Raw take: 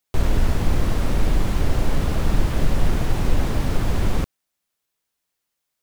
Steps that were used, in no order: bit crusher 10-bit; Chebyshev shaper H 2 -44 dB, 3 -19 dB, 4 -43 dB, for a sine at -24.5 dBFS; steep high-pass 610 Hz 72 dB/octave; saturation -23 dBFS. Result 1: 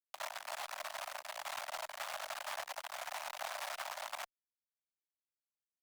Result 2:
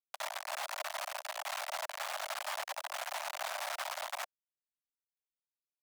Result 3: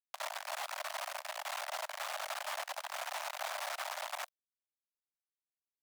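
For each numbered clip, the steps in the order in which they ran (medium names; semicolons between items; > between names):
saturation > steep high-pass > bit crusher > Chebyshev shaper; bit crusher > Chebyshev shaper > steep high-pass > saturation; saturation > Chebyshev shaper > bit crusher > steep high-pass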